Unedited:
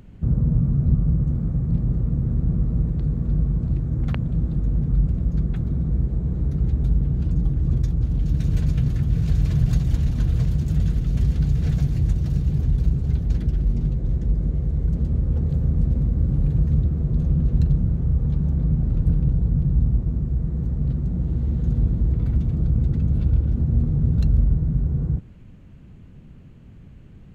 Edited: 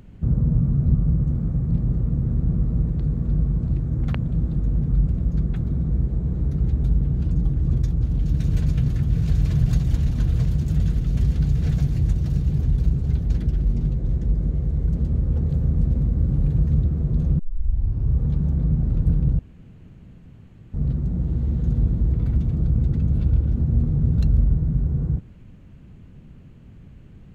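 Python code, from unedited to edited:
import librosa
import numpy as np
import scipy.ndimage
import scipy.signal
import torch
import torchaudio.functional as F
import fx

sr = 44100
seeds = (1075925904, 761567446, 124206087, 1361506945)

y = fx.edit(x, sr, fx.tape_start(start_s=17.39, length_s=0.79),
    fx.room_tone_fill(start_s=19.39, length_s=1.35), tone=tone)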